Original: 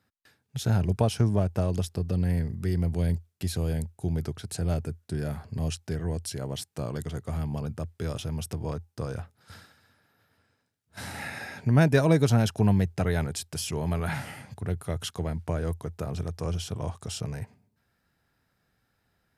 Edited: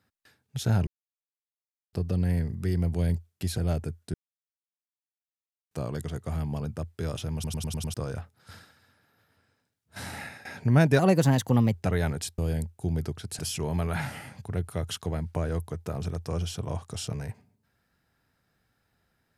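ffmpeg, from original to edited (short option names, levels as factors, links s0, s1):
-filter_complex "[0:a]asplit=17[s0][s1][s2][s3][s4][s5][s6][s7][s8][s9][s10][s11][s12][s13][s14][s15][s16];[s0]atrim=end=0.87,asetpts=PTS-STARTPTS,afade=t=out:st=0.866:d=0.004:c=hsin[s17];[s1]atrim=start=0.87:end=1.93,asetpts=PTS-STARTPTS,volume=0[s18];[s2]atrim=start=1.93:end=3.582,asetpts=PTS-STARTPTS,afade=t=in:d=0.004:c=hsin[s19];[s3]atrim=start=4.588:end=5.15,asetpts=PTS-STARTPTS,afade=t=out:st=0.558:d=0.004:c=hsin[s20];[s4]atrim=start=5.15:end=6.72,asetpts=PTS-STARTPTS,volume=0[s21];[s5]atrim=start=6.72:end=8.452,asetpts=PTS-STARTPTS,afade=t=in:d=0.004:c=hsin[s22];[s6]atrim=start=8.348:end=8.452[s23];[s7]atrim=start=8.348:end=8.452[s24];[s8]atrim=start=8.348:end=8.452[s25];[s9]atrim=start=8.348:end=8.452[s26];[s10]atrim=start=8.348:end=8.452[s27];[s11]atrim=start=8.948:end=11.46,asetpts=PTS-STARTPTS,afade=t=out:st=2.182:d=0.33:silence=0.158489[s28];[s12]atrim=start=11.46:end=12.004,asetpts=PTS-STARTPTS,afade=t=in:d=0.004:c=hsin:silence=0.158489[s29];[s13]atrim=start=12:end=12.88,asetpts=PTS-STARTPTS,asetrate=51597,aresample=44100,atrim=end_sample=33169,asetpts=PTS-STARTPTS[s30];[s14]atrim=start=12.876:end=13.522[s31];[s15]atrim=start=3.578:end=4.592[s32];[s16]atrim=start=13.518[s33];[s17][s18][s19]concat=n=3:v=0:a=1[s34];[s20][s21][s22]concat=n=3:v=0:a=1[s35];[s34][s35]acrossfade=d=0.004:c1=hsin:c2=hsin[s36];[s36][s23]acrossfade=d=0.004:c1=hsin:c2=hsin[s37];[s37][s24]acrossfade=d=0.004:c1=hsin:c2=hsin[s38];[s38][s25]acrossfade=d=0.004:c1=hsin:c2=hsin[s39];[s39][s26]acrossfade=d=0.004:c1=hsin:c2=hsin[s40];[s40][s27]acrossfade=d=0.004:c1=hsin:c2=hsin[s41];[s28][s29]concat=n=2:v=0:a=1[s42];[s41][s42]acrossfade=d=0.004:c1=hsin:c2=hsin[s43];[s43][s30]acrossfade=d=0.004:c1=hsin:c2=hsin[s44];[s44][s31]acrossfade=d=0.004:c1=hsin:c2=hsin[s45];[s45][s32]acrossfade=d=0.004:c1=hsin:c2=hsin[s46];[s46][s33]acrossfade=d=0.004:c1=hsin:c2=hsin"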